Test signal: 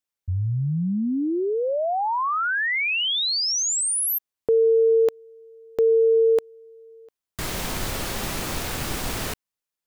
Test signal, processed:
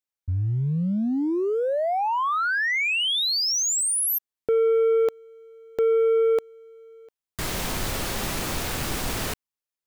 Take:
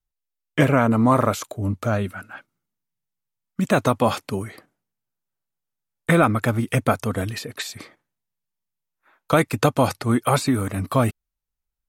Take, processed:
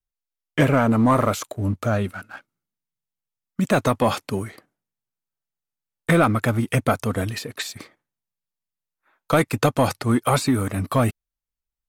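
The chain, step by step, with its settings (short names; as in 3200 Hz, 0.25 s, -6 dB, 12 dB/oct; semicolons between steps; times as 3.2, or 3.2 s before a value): sample leveller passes 1; gain -3 dB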